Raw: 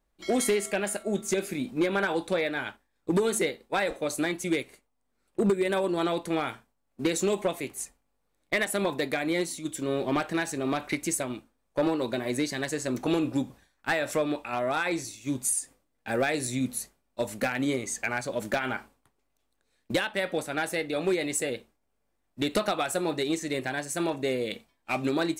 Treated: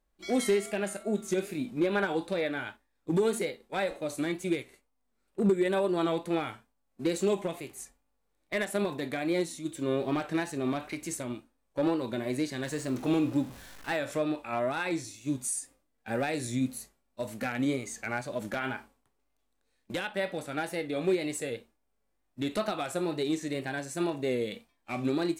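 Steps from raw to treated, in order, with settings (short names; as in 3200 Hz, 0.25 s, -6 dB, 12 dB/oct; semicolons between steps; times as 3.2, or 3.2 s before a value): 12.65–13.97 zero-crossing step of -40.5 dBFS; harmonic-percussive split percussive -9 dB; wow and flutter 57 cents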